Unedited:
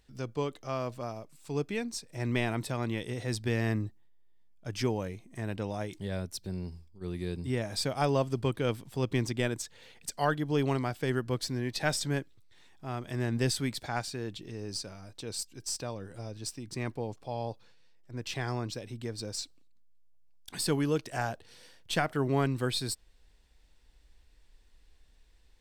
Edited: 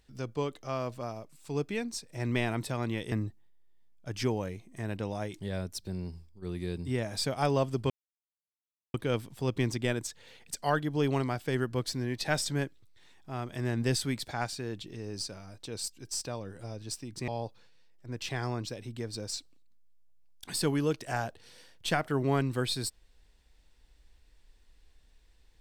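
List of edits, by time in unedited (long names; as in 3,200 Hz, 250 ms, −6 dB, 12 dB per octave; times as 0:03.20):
0:03.12–0:03.71: remove
0:08.49: splice in silence 1.04 s
0:16.83–0:17.33: remove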